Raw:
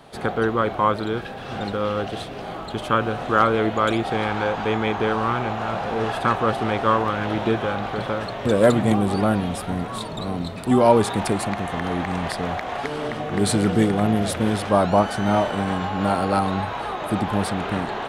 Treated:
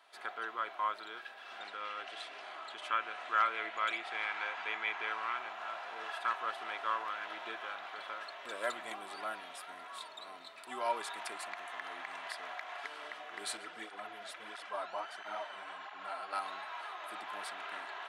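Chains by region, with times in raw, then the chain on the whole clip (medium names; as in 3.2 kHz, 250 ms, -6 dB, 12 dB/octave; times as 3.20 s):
1.60–5.37 s: low-pass 10 kHz 24 dB/octave + upward compressor, threshold -22 dBFS + dynamic bell 2.2 kHz, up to +7 dB, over -41 dBFS, Q 2.5
13.57–16.33 s: treble shelf 9 kHz -9.5 dB + cancelling through-zero flanger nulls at 1.5 Hz, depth 7.3 ms
whole clip: high-pass 1.5 kHz 12 dB/octave; treble shelf 2.7 kHz -10.5 dB; comb 3 ms, depth 39%; trim -6 dB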